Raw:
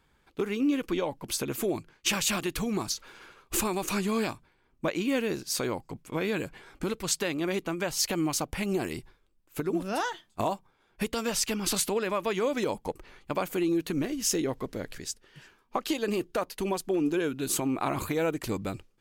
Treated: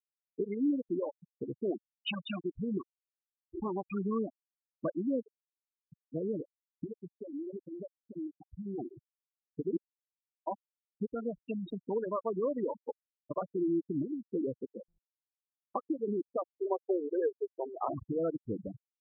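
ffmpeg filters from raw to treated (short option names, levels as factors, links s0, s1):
-filter_complex "[0:a]asettb=1/sr,asplit=3[s0][s1][s2];[s0]atrim=end=5.204[s3];[s1]atrim=start=5.2:end=5.85,asetpts=PTS-STARTPTS,afade=t=in:d=0.004:c=qsin,afade=t=out:st=0.646:d=0.004:c=qsin,acompressor=threshold=0.0126:ratio=4:attack=3.2:release=140:knee=1:detection=peak[s4];[s2]atrim=start=5.846[s5];[s3][s4]acrossfade=d=0.004:c1=hsin:c2=qsin[s6];[s6][s5]acrossfade=d=0.004:c1=qsin:c2=hsin,asettb=1/sr,asplit=3[s7][s8][s9];[s7]atrim=end=6.844[s10];[s8]atrim=start=6.84:end=8.78,asetpts=PTS-STARTPTS,afade=t=in:d=0.004:c=qsin,afade=t=out:st=1.936:d=0.004:c=qsin,acompressor=threshold=0.0316:ratio=6:attack=3.2:release=140:knee=1:detection=peak[s11];[s9]atrim=start=8.776[s12];[s10][s11]acrossfade=d=0.004:c1=hsin:c2=qsin[s13];[s13][s12]acrossfade=d=0.004:c1=qsin:c2=hsin,asplit=3[s14][s15][s16];[s14]afade=t=out:st=16.54:d=0.02[s17];[s15]lowshelf=f=330:t=q:w=3:g=-10,afade=t=in:st=16.54:d=0.02,afade=t=out:st=17.87:d=0.02[s18];[s16]afade=t=in:st=17.87:d=0.02[s19];[s17][s18][s19]amix=inputs=3:normalize=0,asplit=3[s20][s21][s22];[s20]atrim=end=9.77,asetpts=PTS-STARTPTS,afade=t=out:st=9.766:d=0.004:c=hsin[s23];[s21]atrim=start=9.77:end=10.47,asetpts=PTS-STARTPTS,volume=0[s24];[s22]atrim=start=10.47,asetpts=PTS-STARTPTS,afade=t=in:d=0.004:c=hsin[s25];[s23][s24][s25]concat=n=3:v=0:a=1,lowpass=f=4300:w=0.5412,lowpass=f=4300:w=1.3066,afftfilt=real='re*gte(hypot(re,im),0.126)':imag='im*gte(hypot(re,im),0.126)':win_size=1024:overlap=0.75,highpass=81,volume=0.668"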